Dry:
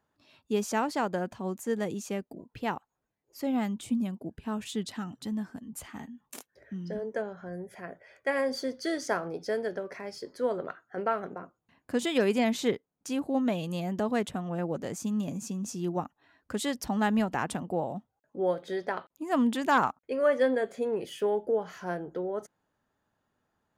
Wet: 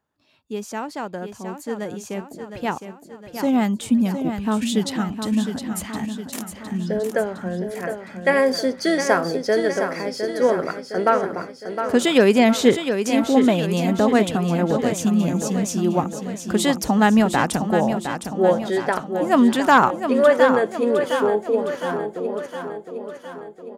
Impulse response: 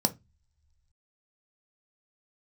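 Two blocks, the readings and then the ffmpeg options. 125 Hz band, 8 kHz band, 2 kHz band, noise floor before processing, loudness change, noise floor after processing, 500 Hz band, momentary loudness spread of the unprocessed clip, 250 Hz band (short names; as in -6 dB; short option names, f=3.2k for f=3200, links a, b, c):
+11.5 dB, +11.0 dB, +11.0 dB, -82 dBFS, +10.5 dB, -43 dBFS, +10.5 dB, 14 LU, +11.5 dB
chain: -af "dynaudnorm=f=270:g=21:m=13.5dB,aecho=1:1:711|1422|2133|2844|3555|4266|4977:0.398|0.219|0.12|0.0662|0.0364|0.02|0.011,volume=-1dB"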